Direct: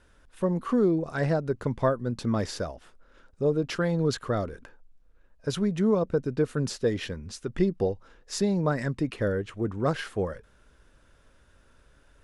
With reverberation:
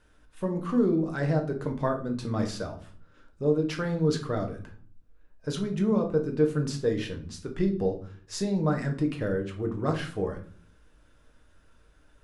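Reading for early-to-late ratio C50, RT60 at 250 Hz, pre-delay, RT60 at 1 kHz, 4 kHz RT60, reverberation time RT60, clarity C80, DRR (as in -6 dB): 11.0 dB, 0.75 s, 6 ms, 0.45 s, 0.35 s, 0.50 s, 16.0 dB, 2.5 dB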